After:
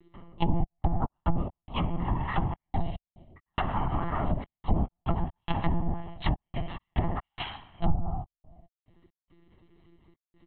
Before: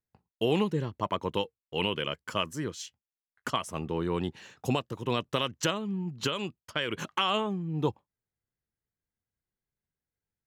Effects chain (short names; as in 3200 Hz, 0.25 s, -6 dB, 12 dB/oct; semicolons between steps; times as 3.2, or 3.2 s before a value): median-filter separation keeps percussive; shoebox room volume 110 m³, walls mixed, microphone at 3.8 m; upward compressor, threshold -36 dBFS; step gate "xxx.x.x.x" 71 bpm -60 dB; ring modulator 360 Hz; low shelf 130 Hz +10 dB; compressor 6:1, threshold -19 dBFS, peak gain reduction 10.5 dB; monotone LPC vocoder at 8 kHz 170 Hz; treble ducked by the level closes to 480 Hz, closed at -19.5 dBFS; comb 1 ms, depth 63%; gain -3 dB